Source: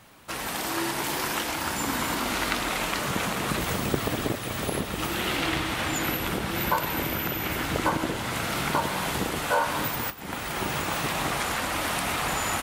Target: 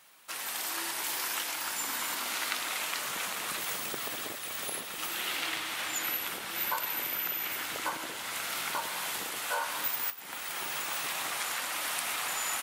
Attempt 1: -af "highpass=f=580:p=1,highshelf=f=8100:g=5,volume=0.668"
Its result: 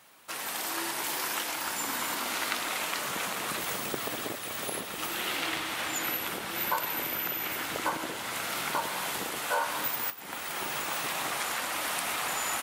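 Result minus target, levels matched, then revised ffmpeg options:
500 Hz band +5.0 dB
-af "highpass=f=1500:p=1,highshelf=f=8100:g=5,volume=0.668"

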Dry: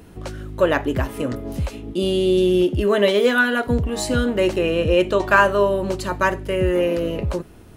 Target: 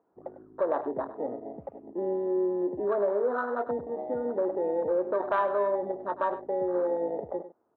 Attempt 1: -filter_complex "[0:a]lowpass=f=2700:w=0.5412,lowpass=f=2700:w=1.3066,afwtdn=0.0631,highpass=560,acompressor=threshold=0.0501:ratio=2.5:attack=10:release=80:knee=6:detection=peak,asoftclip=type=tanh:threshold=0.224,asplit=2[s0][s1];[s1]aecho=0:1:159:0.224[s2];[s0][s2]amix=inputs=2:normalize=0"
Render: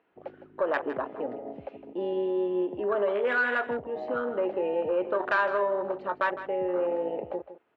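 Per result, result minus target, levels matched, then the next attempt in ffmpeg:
echo 59 ms late; 2 kHz band +11.0 dB
-filter_complex "[0:a]lowpass=f=2700:w=0.5412,lowpass=f=2700:w=1.3066,afwtdn=0.0631,highpass=560,acompressor=threshold=0.0501:ratio=2.5:attack=10:release=80:knee=6:detection=peak,asoftclip=type=tanh:threshold=0.224,asplit=2[s0][s1];[s1]aecho=0:1:100:0.224[s2];[s0][s2]amix=inputs=2:normalize=0"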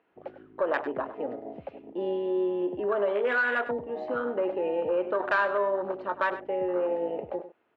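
2 kHz band +11.0 dB
-filter_complex "[0:a]lowpass=f=1100:w=0.5412,lowpass=f=1100:w=1.3066,afwtdn=0.0631,highpass=560,acompressor=threshold=0.0501:ratio=2.5:attack=10:release=80:knee=6:detection=peak,asoftclip=type=tanh:threshold=0.224,asplit=2[s0][s1];[s1]aecho=0:1:100:0.224[s2];[s0][s2]amix=inputs=2:normalize=0"

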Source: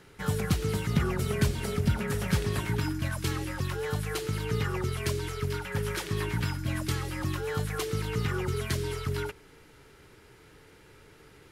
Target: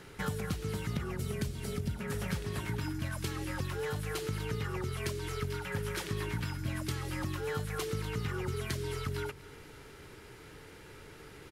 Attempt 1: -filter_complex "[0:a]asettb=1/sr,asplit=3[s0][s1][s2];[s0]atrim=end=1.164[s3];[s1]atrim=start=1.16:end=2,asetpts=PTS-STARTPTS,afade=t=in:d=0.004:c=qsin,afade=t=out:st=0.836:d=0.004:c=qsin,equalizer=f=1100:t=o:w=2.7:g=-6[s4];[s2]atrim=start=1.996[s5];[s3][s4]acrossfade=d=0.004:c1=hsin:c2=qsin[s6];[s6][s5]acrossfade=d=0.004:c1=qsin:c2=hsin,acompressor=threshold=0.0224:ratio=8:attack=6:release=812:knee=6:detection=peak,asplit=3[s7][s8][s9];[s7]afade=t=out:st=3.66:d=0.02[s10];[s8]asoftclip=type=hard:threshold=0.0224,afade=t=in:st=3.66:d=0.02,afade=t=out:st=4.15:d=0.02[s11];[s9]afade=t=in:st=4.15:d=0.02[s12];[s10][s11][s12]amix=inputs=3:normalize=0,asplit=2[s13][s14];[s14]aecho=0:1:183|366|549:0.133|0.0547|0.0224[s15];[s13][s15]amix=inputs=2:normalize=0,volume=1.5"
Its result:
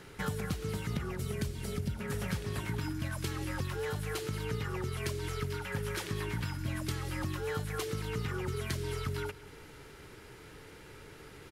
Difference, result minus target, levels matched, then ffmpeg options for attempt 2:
echo 62 ms early
-filter_complex "[0:a]asettb=1/sr,asplit=3[s0][s1][s2];[s0]atrim=end=1.164[s3];[s1]atrim=start=1.16:end=2,asetpts=PTS-STARTPTS,afade=t=in:d=0.004:c=qsin,afade=t=out:st=0.836:d=0.004:c=qsin,equalizer=f=1100:t=o:w=2.7:g=-6[s4];[s2]atrim=start=1.996[s5];[s3][s4]acrossfade=d=0.004:c1=hsin:c2=qsin[s6];[s6][s5]acrossfade=d=0.004:c1=qsin:c2=hsin,acompressor=threshold=0.0224:ratio=8:attack=6:release=812:knee=6:detection=peak,asplit=3[s7][s8][s9];[s7]afade=t=out:st=3.66:d=0.02[s10];[s8]asoftclip=type=hard:threshold=0.0224,afade=t=in:st=3.66:d=0.02,afade=t=out:st=4.15:d=0.02[s11];[s9]afade=t=in:st=4.15:d=0.02[s12];[s10][s11][s12]amix=inputs=3:normalize=0,asplit=2[s13][s14];[s14]aecho=0:1:245|490|735:0.133|0.0547|0.0224[s15];[s13][s15]amix=inputs=2:normalize=0,volume=1.5"

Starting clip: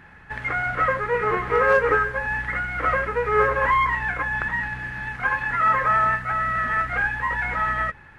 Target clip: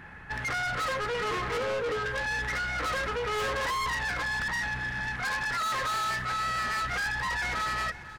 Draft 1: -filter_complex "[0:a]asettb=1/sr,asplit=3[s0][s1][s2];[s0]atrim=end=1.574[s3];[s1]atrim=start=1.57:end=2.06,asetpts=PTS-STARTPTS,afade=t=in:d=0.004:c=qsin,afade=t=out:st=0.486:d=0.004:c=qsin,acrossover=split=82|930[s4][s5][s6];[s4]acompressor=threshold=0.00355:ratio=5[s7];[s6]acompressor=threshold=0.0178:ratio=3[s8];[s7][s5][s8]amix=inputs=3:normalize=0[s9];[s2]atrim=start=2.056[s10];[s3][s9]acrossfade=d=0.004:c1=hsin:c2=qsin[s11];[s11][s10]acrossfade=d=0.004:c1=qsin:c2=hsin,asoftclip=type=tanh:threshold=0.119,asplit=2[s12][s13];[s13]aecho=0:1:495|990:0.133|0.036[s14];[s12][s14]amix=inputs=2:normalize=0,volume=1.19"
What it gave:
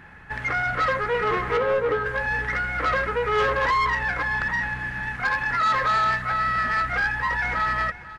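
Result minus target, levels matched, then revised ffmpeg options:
saturation: distortion -9 dB
-filter_complex "[0:a]asettb=1/sr,asplit=3[s0][s1][s2];[s0]atrim=end=1.574[s3];[s1]atrim=start=1.57:end=2.06,asetpts=PTS-STARTPTS,afade=t=in:d=0.004:c=qsin,afade=t=out:st=0.486:d=0.004:c=qsin,acrossover=split=82|930[s4][s5][s6];[s4]acompressor=threshold=0.00355:ratio=5[s7];[s6]acompressor=threshold=0.0178:ratio=3[s8];[s7][s5][s8]amix=inputs=3:normalize=0[s9];[s2]atrim=start=2.056[s10];[s3][s9]acrossfade=d=0.004:c1=hsin:c2=qsin[s11];[s11][s10]acrossfade=d=0.004:c1=qsin:c2=hsin,asoftclip=type=tanh:threshold=0.0316,asplit=2[s12][s13];[s13]aecho=0:1:495|990:0.133|0.036[s14];[s12][s14]amix=inputs=2:normalize=0,volume=1.19"

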